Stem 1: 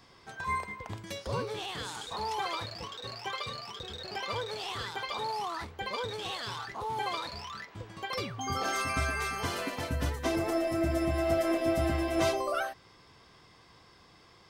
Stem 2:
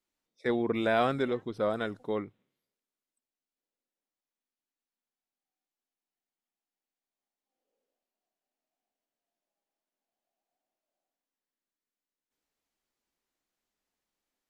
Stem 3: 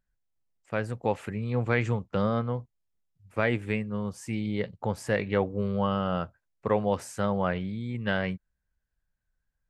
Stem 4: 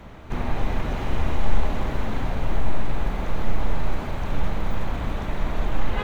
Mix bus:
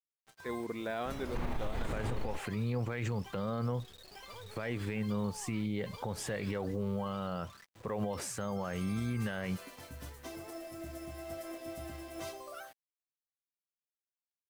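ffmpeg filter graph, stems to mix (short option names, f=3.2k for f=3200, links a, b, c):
-filter_complex "[0:a]highshelf=f=7.8k:g=12,acrusher=bits=5:mode=log:mix=0:aa=0.000001,volume=-15.5dB[a];[1:a]volume=-9.5dB,asplit=2[b][c];[2:a]alimiter=limit=-21dB:level=0:latency=1,adelay=1200,volume=2.5dB[d];[3:a]acompressor=threshold=-25dB:ratio=6,adelay=1050,volume=-1dB[e];[c]apad=whole_len=312612[f];[e][f]sidechaingate=range=-33dB:threshold=-59dB:ratio=16:detection=peak[g];[a][b][d][g]amix=inputs=4:normalize=0,acrusher=bits=8:mix=0:aa=0.5,alimiter=level_in=2dB:limit=-24dB:level=0:latency=1:release=66,volume=-2dB"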